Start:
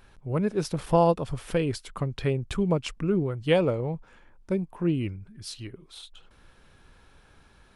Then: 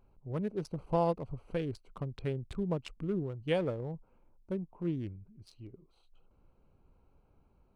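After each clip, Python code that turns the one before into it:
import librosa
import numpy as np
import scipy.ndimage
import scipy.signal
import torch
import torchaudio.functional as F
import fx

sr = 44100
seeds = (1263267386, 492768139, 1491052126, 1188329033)

y = fx.wiener(x, sr, points=25)
y = F.gain(torch.from_numpy(y), -8.5).numpy()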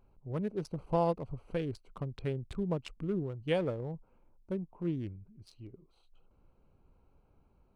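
y = x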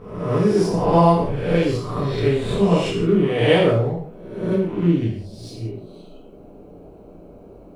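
y = fx.spec_swells(x, sr, rise_s=0.88)
y = fx.dmg_noise_band(y, sr, seeds[0], low_hz=150.0, high_hz=600.0, level_db=-59.0)
y = fx.rev_gated(y, sr, seeds[1], gate_ms=210, shape='falling', drr_db=-5.0)
y = F.gain(torch.from_numpy(y), 8.5).numpy()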